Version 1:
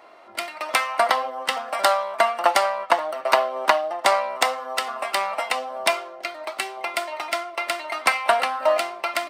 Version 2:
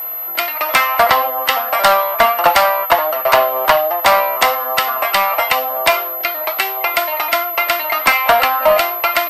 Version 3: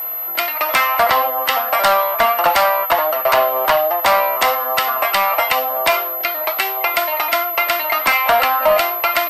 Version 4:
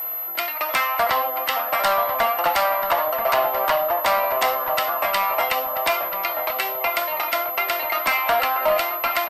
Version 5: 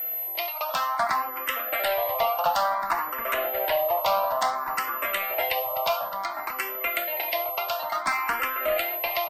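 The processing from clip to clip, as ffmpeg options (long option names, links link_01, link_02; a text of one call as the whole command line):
ffmpeg -i in.wav -filter_complex "[0:a]aeval=exprs='val(0)+0.0447*sin(2*PI*12000*n/s)':channel_layout=same,asplit=2[link_01][link_02];[link_02]highpass=frequency=720:poles=1,volume=11dB,asoftclip=type=tanh:threshold=-1.5dB[link_03];[link_01][link_03]amix=inputs=2:normalize=0,lowpass=frequency=4500:poles=1,volume=-6dB,acontrast=81,volume=-1dB" out.wav
ffmpeg -i in.wav -af "alimiter=limit=-6.5dB:level=0:latency=1:release=68" out.wav
ffmpeg -i in.wav -filter_complex "[0:a]asplit=2[link_01][link_02];[link_02]adelay=984,lowpass=frequency=1300:poles=1,volume=-5.5dB,asplit=2[link_03][link_04];[link_04]adelay=984,lowpass=frequency=1300:poles=1,volume=0.49,asplit=2[link_05][link_06];[link_06]adelay=984,lowpass=frequency=1300:poles=1,volume=0.49,asplit=2[link_07][link_08];[link_08]adelay=984,lowpass=frequency=1300:poles=1,volume=0.49,asplit=2[link_09][link_10];[link_10]adelay=984,lowpass=frequency=1300:poles=1,volume=0.49,asplit=2[link_11][link_12];[link_12]adelay=984,lowpass=frequency=1300:poles=1,volume=0.49[link_13];[link_01][link_03][link_05][link_07][link_09][link_11][link_13]amix=inputs=7:normalize=0,areverse,acompressor=mode=upward:threshold=-18dB:ratio=2.5,areverse,volume=-6dB" out.wav
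ffmpeg -i in.wav -filter_complex "[0:a]asplit=2[link_01][link_02];[link_02]afreqshift=0.57[link_03];[link_01][link_03]amix=inputs=2:normalize=1,volume=-2dB" out.wav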